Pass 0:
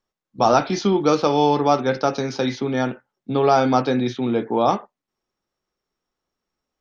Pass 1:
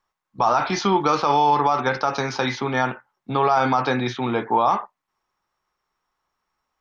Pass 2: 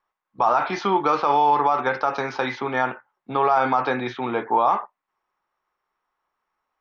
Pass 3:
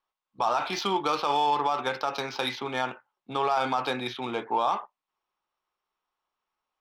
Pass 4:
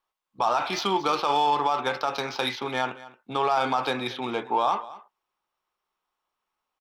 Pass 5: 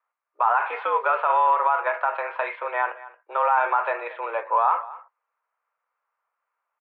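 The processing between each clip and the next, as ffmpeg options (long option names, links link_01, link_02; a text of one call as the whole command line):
ffmpeg -i in.wav -af "equalizer=frequency=250:width_type=o:width=1:gain=-5,equalizer=frequency=500:width_type=o:width=1:gain=-4,equalizer=frequency=1000:width_type=o:width=1:gain=11,equalizer=frequency=2000:width_type=o:width=1:gain=4,alimiter=level_in=8.5dB:limit=-1dB:release=50:level=0:latency=1,volume=-7.5dB" out.wav
ffmpeg -i in.wav -af "bass=frequency=250:gain=-9,treble=frequency=4000:gain=-14" out.wav
ffmpeg -i in.wav -af "aexciter=amount=5:drive=6.6:freq=2700,adynamicsmooth=sensitivity=1:basefreq=3100,volume=-6.5dB" out.wav
ffmpeg -i in.wav -af "aecho=1:1:226:0.126,volume=2dB" out.wav
ffmpeg -i in.wav -af "highpass=frequency=390:width_type=q:width=0.5412,highpass=frequency=390:width_type=q:width=1.307,lowpass=frequency=2200:width_type=q:width=0.5176,lowpass=frequency=2200:width_type=q:width=0.7071,lowpass=frequency=2200:width_type=q:width=1.932,afreqshift=110,volume=3.5dB" out.wav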